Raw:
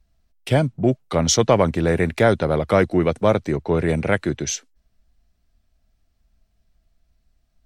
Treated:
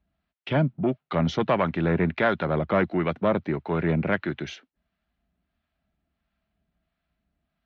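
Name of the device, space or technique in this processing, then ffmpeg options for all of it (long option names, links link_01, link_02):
guitar amplifier with harmonic tremolo: -filter_complex "[0:a]acrossover=split=740[link_01][link_02];[link_01]aeval=exprs='val(0)*(1-0.5/2+0.5/2*cos(2*PI*1.5*n/s))':channel_layout=same[link_03];[link_02]aeval=exprs='val(0)*(1-0.5/2-0.5/2*cos(2*PI*1.5*n/s))':channel_layout=same[link_04];[link_03][link_04]amix=inputs=2:normalize=0,asoftclip=type=tanh:threshold=-11.5dB,highpass=100,equalizer=frequency=110:width_type=q:width=4:gain=-10,equalizer=frequency=170:width_type=q:width=4:gain=3,equalizer=frequency=480:width_type=q:width=4:gain=-6,equalizer=frequency=1400:width_type=q:width=4:gain=3,lowpass=frequency=3400:width=0.5412,lowpass=frequency=3400:width=1.3066"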